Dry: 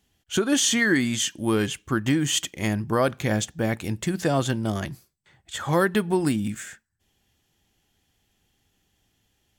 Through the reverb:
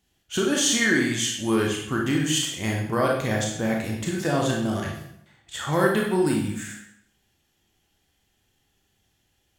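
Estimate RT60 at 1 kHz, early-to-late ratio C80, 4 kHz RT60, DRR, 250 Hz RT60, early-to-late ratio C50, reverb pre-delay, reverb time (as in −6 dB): 0.75 s, 7.0 dB, 0.65 s, −1.5 dB, 0.75 s, 3.0 dB, 24 ms, 0.75 s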